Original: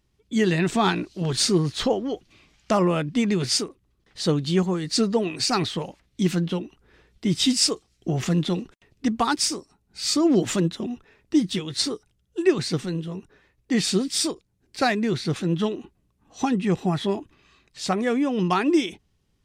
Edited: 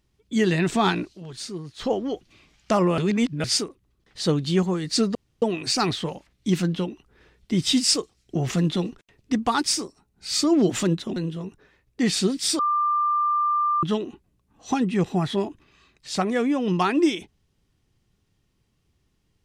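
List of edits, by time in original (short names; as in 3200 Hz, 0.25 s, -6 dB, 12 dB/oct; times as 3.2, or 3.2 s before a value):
1.05–1.94 dip -13.5 dB, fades 0.16 s
2.98–3.44 reverse
5.15 insert room tone 0.27 s
10.89–12.87 cut
14.3–15.54 bleep 1190 Hz -19 dBFS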